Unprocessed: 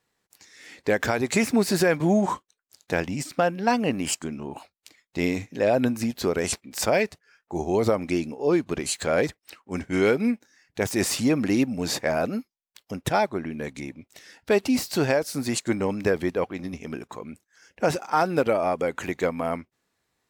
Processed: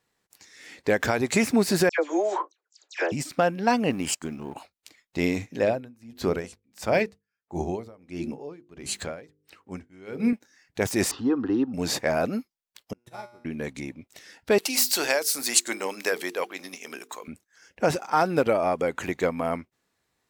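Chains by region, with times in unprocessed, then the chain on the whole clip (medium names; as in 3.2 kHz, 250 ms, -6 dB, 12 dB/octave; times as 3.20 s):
1.89–3.12 s: Chebyshev band-pass 320–7400 Hz, order 5 + phase dispersion lows, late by 97 ms, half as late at 2.1 kHz
3.90–4.56 s: companding laws mixed up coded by A + band-stop 590 Hz, Q 15
5.63–10.33 s: tone controls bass +4 dB, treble -2 dB + hum notches 50/100/150/200/250/300/350/400/450/500 Hz + logarithmic tremolo 1.5 Hz, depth 28 dB
11.11–11.74 s: low-pass 3.2 kHz 24 dB/octave + static phaser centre 610 Hz, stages 6
12.93–13.45 s: feedback comb 120 Hz, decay 1.3 s, mix 90% + upward expansion 2.5:1, over -46 dBFS
14.58–17.28 s: high-pass 280 Hz + tilt EQ +3.5 dB/octave + hum notches 50/100/150/200/250/300/350/400/450 Hz
whole clip: none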